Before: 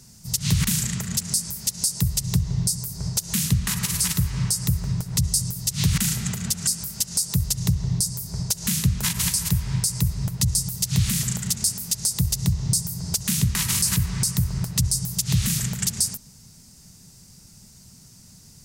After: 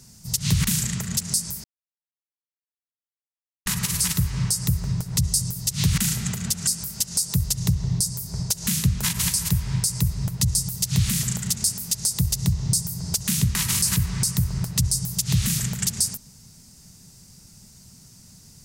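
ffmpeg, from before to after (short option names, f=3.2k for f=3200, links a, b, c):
-filter_complex "[0:a]asplit=3[a][b][c];[a]atrim=end=1.64,asetpts=PTS-STARTPTS,afade=t=out:st=1.636:d=0.004:c=hsin[d];[b]atrim=start=1.64:end=3.66,asetpts=PTS-STARTPTS,volume=0[e];[c]atrim=start=3.66,asetpts=PTS-STARTPTS,afade=t=in:d=0.004:c=hsin[f];[d][e][f]concat=n=3:v=0:a=1"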